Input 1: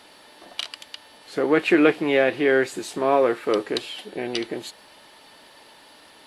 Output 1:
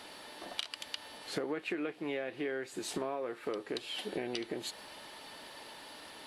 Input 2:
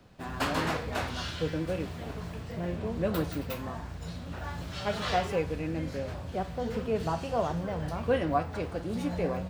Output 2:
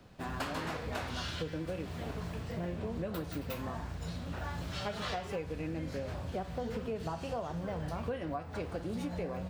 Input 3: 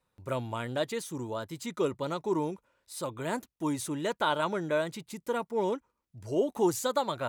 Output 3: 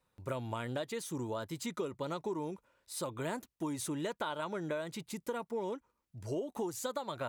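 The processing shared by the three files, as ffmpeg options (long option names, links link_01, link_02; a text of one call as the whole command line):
ffmpeg -i in.wav -af "acompressor=threshold=-33dB:ratio=20" out.wav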